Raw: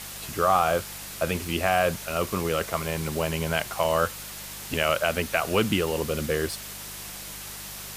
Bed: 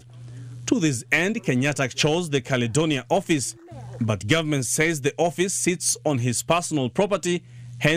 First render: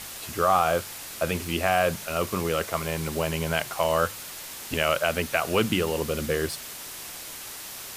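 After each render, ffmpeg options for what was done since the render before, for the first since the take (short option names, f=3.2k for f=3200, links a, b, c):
-af "bandreject=f=50:t=h:w=4,bandreject=f=100:t=h:w=4,bandreject=f=150:t=h:w=4,bandreject=f=200:t=h:w=4"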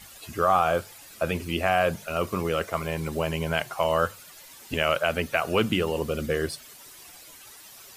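-af "afftdn=nr=12:nf=-39"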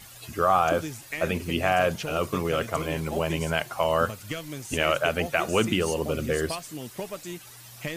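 -filter_complex "[1:a]volume=-14dB[a];[0:a][a]amix=inputs=2:normalize=0"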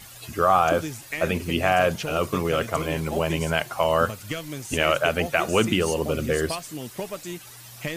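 -af "volume=2.5dB"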